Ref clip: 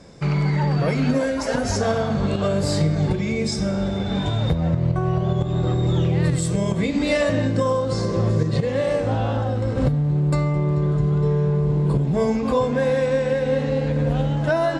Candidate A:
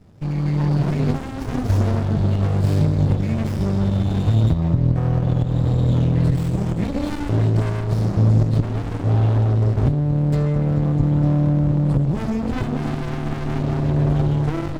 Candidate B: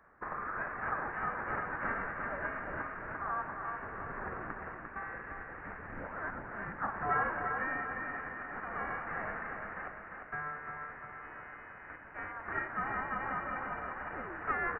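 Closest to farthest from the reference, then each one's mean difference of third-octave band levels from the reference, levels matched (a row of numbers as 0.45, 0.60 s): A, B; 4.5, 11.5 dB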